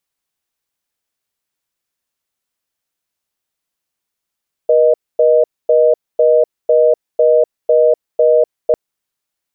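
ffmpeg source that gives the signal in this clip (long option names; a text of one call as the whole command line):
ffmpeg -f lavfi -i "aevalsrc='0.316*(sin(2*PI*480*t)+sin(2*PI*620*t))*clip(min(mod(t,0.5),0.25-mod(t,0.5))/0.005,0,1)':duration=4.05:sample_rate=44100" out.wav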